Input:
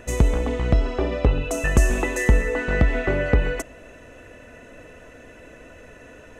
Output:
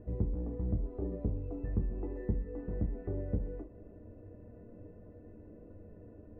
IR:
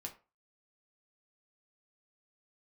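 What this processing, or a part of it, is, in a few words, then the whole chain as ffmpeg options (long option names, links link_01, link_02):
television next door: -filter_complex "[0:a]acompressor=threshold=-29dB:ratio=3,lowpass=350[link_01];[1:a]atrim=start_sample=2205[link_02];[link_01][link_02]afir=irnorm=-1:irlink=0"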